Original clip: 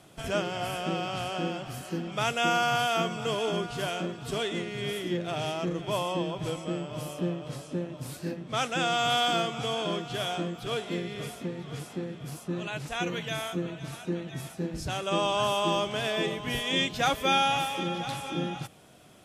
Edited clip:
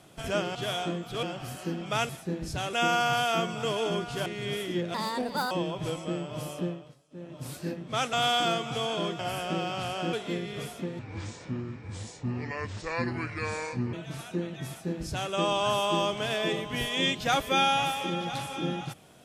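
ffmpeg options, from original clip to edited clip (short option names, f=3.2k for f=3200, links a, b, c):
-filter_complex "[0:a]asplit=15[a][b][c][d][e][f][g][h][i][j][k][l][m][n][o];[a]atrim=end=0.552[p];[b]atrim=start=10.068:end=10.752[q];[c]atrim=start=1.488:end=2.352[r];[d]atrim=start=14.408:end=15.052[s];[e]atrim=start=2.348:end=3.882[t];[f]atrim=start=4.618:end=5.304[u];[g]atrim=start=5.3:end=6.11,asetpts=PTS-STARTPTS,asetrate=62622,aresample=44100[v];[h]atrim=start=6.106:end=7.55,asetpts=PTS-STARTPTS,afade=t=out:st=1.074:d=0.37:silence=0.0707946[w];[i]atrim=start=7.55:end=7.7,asetpts=PTS-STARTPTS,volume=-23dB[x];[j]atrim=start=7.7:end=8.732,asetpts=PTS-STARTPTS,afade=t=in:d=0.37:silence=0.0707946[y];[k]atrim=start=9.008:end=10.072[z];[l]atrim=start=0.548:end=1.492[aa];[m]atrim=start=10.748:end=11.614[ab];[n]atrim=start=11.61:end=13.67,asetpts=PTS-STARTPTS,asetrate=30870,aresample=44100,atrim=end_sample=129780,asetpts=PTS-STARTPTS[ac];[o]atrim=start=13.666[ad];[p][q]acrossfade=d=0.004:c1=hsin:c2=hsin[ae];[ae][r]acrossfade=d=0.004:c1=hsin:c2=hsin[af];[af][s]acrossfade=d=0.004:c1=hsin:c2=hsin[ag];[ag][t]acrossfade=d=0.004:c1=hsin:c2=hsin[ah];[ah][u]acrossfade=d=0.004:c1=hsin:c2=hsin[ai];[ai][v]acrossfade=d=0.004:c1=hsin:c2=hsin[aj];[w][x][y]concat=n=3:v=0:a=1[ak];[aj][ak]acrossfade=d=0.004:c1=hsin:c2=hsin[al];[al][z]acrossfade=d=0.004:c1=hsin:c2=hsin[am];[am][aa]acrossfade=d=0.004:c1=hsin:c2=hsin[an];[an][ab]acrossfade=d=0.004:c1=hsin:c2=hsin[ao];[ao][ac]acrossfade=d=0.004:c1=hsin:c2=hsin[ap];[ap][ad]acrossfade=d=0.004:c1=hsin:c2=hsin"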